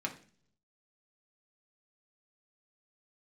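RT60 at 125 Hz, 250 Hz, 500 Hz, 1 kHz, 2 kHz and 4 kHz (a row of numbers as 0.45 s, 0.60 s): 0.95 s, 0.75 s, 0.55 s, 0.40 s, 0.45 s, 0.50 s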